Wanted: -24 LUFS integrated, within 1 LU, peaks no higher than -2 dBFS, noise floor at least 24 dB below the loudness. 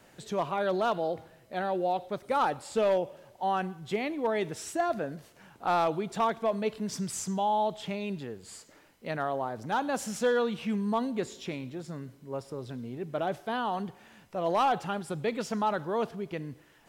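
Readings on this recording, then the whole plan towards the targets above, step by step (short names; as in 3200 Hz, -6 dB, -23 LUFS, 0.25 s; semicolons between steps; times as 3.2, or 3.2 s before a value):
clipped 0.4%; flat tops at -19.5 dBFS; loudness -31.5 LUFS; peak -19.5 dBFS; loudness target -24.0 LUFS
-> clip repair -19.5 dBFS; gain +7.5 dB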